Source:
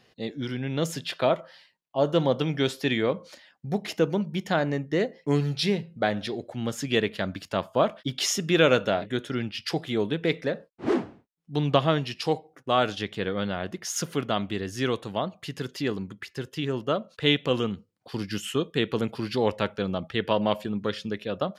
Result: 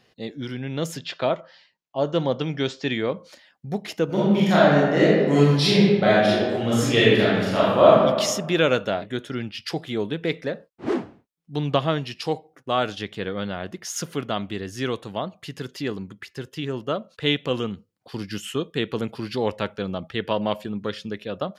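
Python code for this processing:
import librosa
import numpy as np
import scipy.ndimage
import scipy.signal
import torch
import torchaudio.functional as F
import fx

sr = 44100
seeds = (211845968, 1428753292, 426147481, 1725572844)

y = fx.steep_lowpass(x, sr, hz=7300.0, slope=48, at=(0.97, 3.17))
y = fx.reverb_throw(y, sr, start_s=4.05, length_s=3.94, rt60_s=1.4, drr_db=-9.0)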